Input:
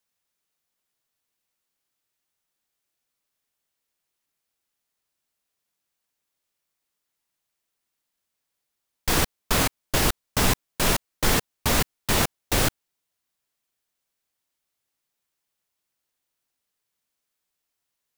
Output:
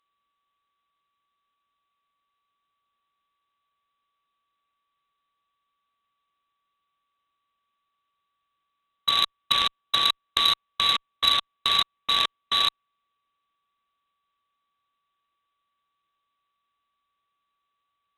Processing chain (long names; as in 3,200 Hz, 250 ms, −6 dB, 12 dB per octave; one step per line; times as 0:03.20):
samples sorted by size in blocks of 16 samples
in parallel at +0.5 dB: compressor whose output falls as the input rises −28 dBFS, ratio −1
on the sum: voice inversion scrambler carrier 3,900 Hz
harmonic generator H 3 −15 dB, 4 −44 dB, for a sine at −3 dBFS
level +1 dB